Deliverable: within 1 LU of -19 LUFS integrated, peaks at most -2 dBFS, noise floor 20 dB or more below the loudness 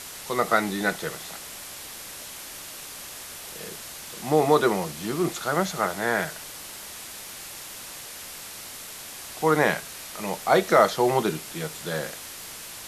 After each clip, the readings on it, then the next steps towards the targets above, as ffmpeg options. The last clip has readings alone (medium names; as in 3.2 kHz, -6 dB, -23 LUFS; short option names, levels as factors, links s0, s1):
noise floor -40 dBFS; noise floor target -47 dBFS; loudness -27.0 LUFS; peak level -4.5 dBFS; loudness target -19.0 LUFS
-> -af "afftdn=nr=7:nf=-40"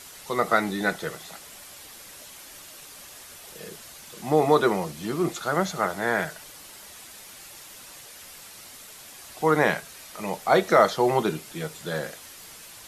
noise floor -45 dBFS; loudness -24.5 LUFS; peak level -4.5 dBFS; loudness target -19.0 LUFS
-> -af "volume=1.88,alimiter=limit=0.794:level=0:latency=1"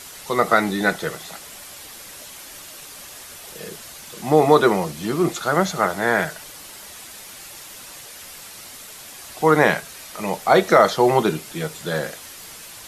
loudness -19.5 LUFS; peak level -2.0 dBFS; noise floor -40 dBFS